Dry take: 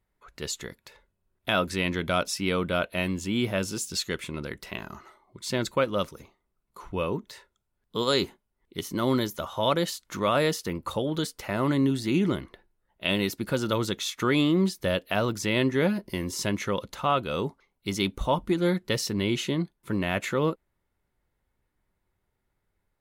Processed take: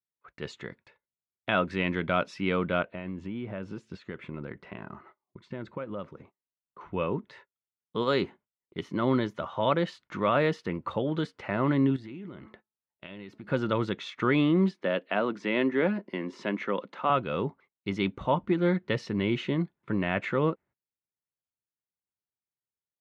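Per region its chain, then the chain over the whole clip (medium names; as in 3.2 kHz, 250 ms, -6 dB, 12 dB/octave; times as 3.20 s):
2.82–6.81 s: compression 5:1, threshold -31 dBFS + treble shelf 2.6 kHz -11.5 dB
11.96–13.50 s: de-hum 215.8 Hz, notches 6 + compression, threshold -39 dBFS
14.71–17.10 s: high-pass 200 Hz 24 dB/octave + treble shelf 7.4 kHz -10 dB
whole clip: Chebyshev band-pass 120–2200 Hz, order 2; gate -53 dBFS, range -25 dB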